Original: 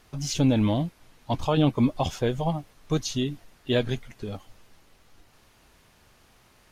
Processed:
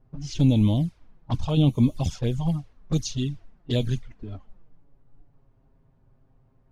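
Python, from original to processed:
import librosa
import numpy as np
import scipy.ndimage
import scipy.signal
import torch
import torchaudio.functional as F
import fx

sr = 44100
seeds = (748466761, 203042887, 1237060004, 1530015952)

y = fx.env_lowpass(x, sr, base_hz=740.0, full_db=-20.5)
y = fx.env_flanger(y, sr, rest_ms=7.8, full_db=-19.5)
y = fx.bass_treble(y, sr, bass_db=10, treble_db=12)
y = y * 10.0 ** (-4.0 / 20.0)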